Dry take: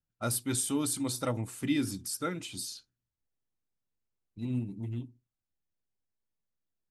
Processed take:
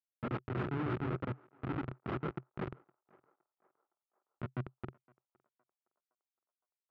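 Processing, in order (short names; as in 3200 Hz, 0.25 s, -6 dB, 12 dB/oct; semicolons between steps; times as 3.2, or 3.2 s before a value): bell 210 Hz +6 dB 0.24 oct; compressor 2.5:1, threshold -35 dBFS, peak gain reduction 8 dB; chorus voices 4, 0.55 Hz, delay 25 ms, depth 5 ms; Schmitt trigger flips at -34.5 dBFS; speaker cabinet 110–2700 Hz, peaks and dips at 130 Hz +10 dB, 370 Hz +9 dB, 1300 Hz +9 dB; on a send: narrowing echo 0.514 s, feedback 47%, band-pass 860 Hz, level -23 dB; on the sum: ending taper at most 570 dB/s; gain +7 dB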